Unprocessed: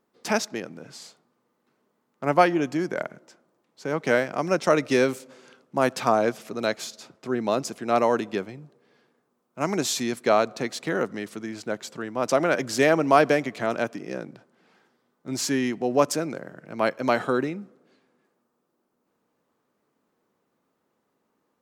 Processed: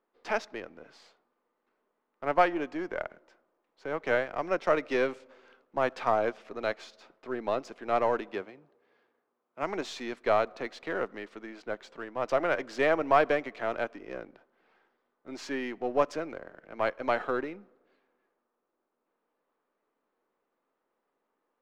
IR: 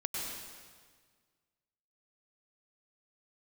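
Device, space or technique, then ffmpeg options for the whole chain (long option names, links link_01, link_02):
crystal radio: -filter_complex "[0:a]highpass=370,lowpass=2800,aeval=exprs='if(lt(val(0),0),0.708*val(0),val(0))':channel_layout=same,asettb=1/sr,asplit=3[link_01][link_02][link_03];[link_01]atrim=end=8.324[link_04];[link_02]atrim=start=8.32:end=9.63,asetpts=PTS-STARTPTS,afade=type=in:duration=0.004:curve=qsin,afade=type=out:start_time=1.306:duration=0.004:curve=qsin,highpass=61[link_05];[link_03]atrim=start=9.626[link_06];[link_04][link_05]acrossfade=duration=0.004:curve1=hsin:curve2=qsin[link_07];[link_07][link_06]acrossfade=duration=0.004:curve1=qsin:curve2=hsin,volume=-3dB"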